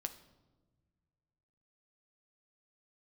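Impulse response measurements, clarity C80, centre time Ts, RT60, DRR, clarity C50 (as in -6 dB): 16.0 dB, 8 ms, no single decay rate, 7.5 dB, 13.0 dB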